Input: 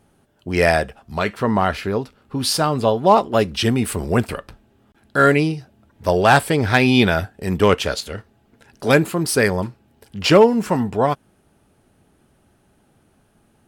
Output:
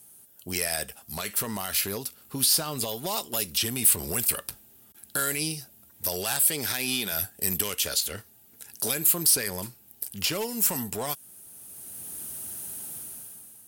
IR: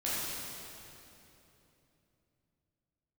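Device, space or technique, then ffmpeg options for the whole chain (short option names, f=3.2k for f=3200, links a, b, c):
FM broadcast chain: -filter_complex "[0:a]highpass=60,dynaudnorm=f=160:g=9:m=15dB,acrossover=split=2200|4500[a][b][c];[a]acompressor=threshold=-20dB:ratio=4[d];[b]acompressor=threshold=-29dB:ratio=4[e];[c]acompressor=threshold=-40dB:ratio=4[f];[d][e][f]amix=inputs=3:normalize=0,aemphasis=mode=production:type=75fm,alimiter=limit=-12.5dB:level=0:latency=1:release=48,asoftclip=type=hard:threshold=-16dB,lowpass=f=15k:w=0.5412,lowpass=f=15k:w=1.3066,aemphasis=mode=production:type=75fm,asettb=1/sr,asplit=3[g][h][i];[g]atrim=end=6.454[j];[h]atrim=start=6.45:end=7.12,asetpts=PTS-STARTPTS,afade=t=in:d=0.004:c=qsin,afade=t=out:st=0.666:d=0.004:c=qsin,highpass=150[k];[i]atrim=start=7.116[l];[j][k]acrossfade=d=0.004:c1=hsin:c2=qsin[m];[m][l]acrossfade=d=0.004:c1=qsin:c2=hsin,volume=-8dB"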